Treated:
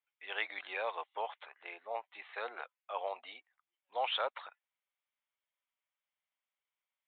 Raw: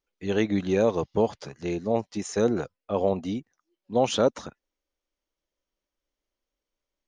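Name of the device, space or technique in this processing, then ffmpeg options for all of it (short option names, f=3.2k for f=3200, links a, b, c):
musical greeting card: -filter_complex "[0:a]aresample=8000,aresample=44100,highpass=f=790:w=0.5412,highpass=f=790:w=1.3066,equalizer=f=2.2k:t=o:w=0.31:g=5,asettb=1/sr,asplit=3[a][b][c];[a]atrim=end=1.464[d];[b]atrim=start=1.46:end=2.15,asetpts=PTS-STARTPTS,afade=t=in:d=0.004:c=qsin,afade=t=out:st=0.686:d=0.004:c=qsin,lowpass=f=2.3k:p=1[e];[c]atrim=start=2.146[f];[d][e]acrossfade=d=0.004:c1=hsin:c2=qsin[g];[g][f]acrossfade=d=0.004:c1=qsin:c2=hsin,volume=-3.5dB"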